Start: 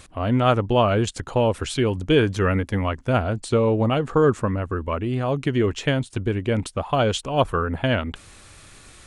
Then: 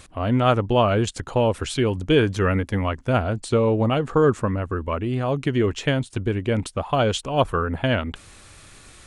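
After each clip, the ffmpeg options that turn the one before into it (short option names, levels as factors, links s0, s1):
-af anull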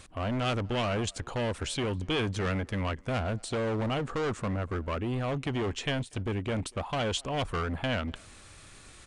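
-filter_complex "[0:a]acrossover=split=2100[s0][s1];[s0]asoftclip=type=hard:threshold=0.0668[s2];[s2][s1]amix=inputs=2:normalize=0,asplit=2[s3][s4];[s4]adelay=240,highpass=300,lowpass=3400,asoftclip=type=hard:threshold=0.0841,volume=0.0562[s5];[s3][s5]amix=inputs=2:normalize=0,aresample=22050,aresample=44100,volume=0.596"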